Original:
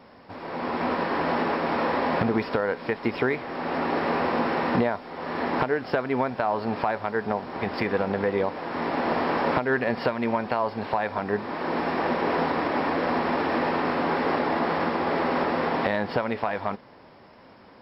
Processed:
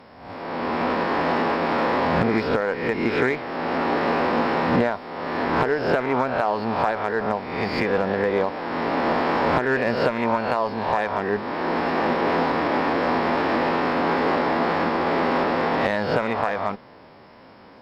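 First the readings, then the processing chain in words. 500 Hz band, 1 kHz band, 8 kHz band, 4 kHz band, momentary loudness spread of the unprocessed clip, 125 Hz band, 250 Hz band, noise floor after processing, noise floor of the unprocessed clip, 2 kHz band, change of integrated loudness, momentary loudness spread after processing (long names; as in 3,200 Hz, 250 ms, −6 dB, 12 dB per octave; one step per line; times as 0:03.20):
+3.5 dB, +3.5 dB, can't be measured, +4.0 dB, 5 LU, +3.5 dB, +3.0 dB, −47 dBFS, −51 dBFS, +3.5 dB, +3.5 dB, 5 LU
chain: peak hold with a rise ahead of every peak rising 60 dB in 0.78 s
harmonic generator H 8 −31 dB, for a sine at −9 dBFS
level +1 dB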